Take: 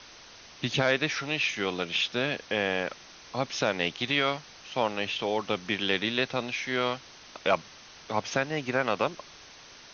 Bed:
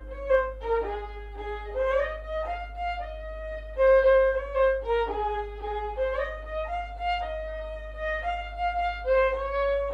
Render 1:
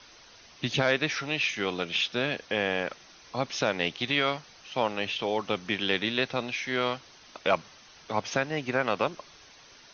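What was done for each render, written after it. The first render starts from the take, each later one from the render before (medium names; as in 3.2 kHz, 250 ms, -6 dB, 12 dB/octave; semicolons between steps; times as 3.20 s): noise reduction 6 dB, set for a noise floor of -50 dBFS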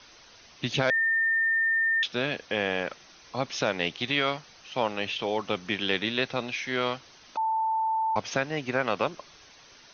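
0.90–2.03 s: bleep 1.81 kHz -21.5 dBFS; 7.37–8.16 s: bleep 887 Hz -23.5 dBFS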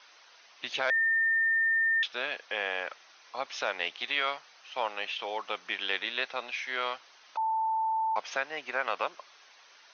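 high-pass 770 Hz 12 dB/octave; treble shelf 4.8 kHz -11 dB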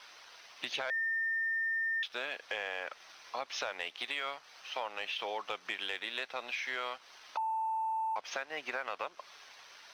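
compression 4:1, threshold -38 dBFS, peak gain reduction 12 dB; waveshaping leveller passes 1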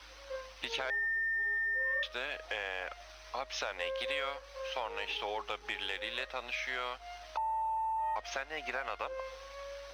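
add bed -20 dB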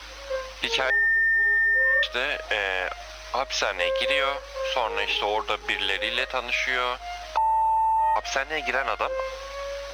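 trim +12 dB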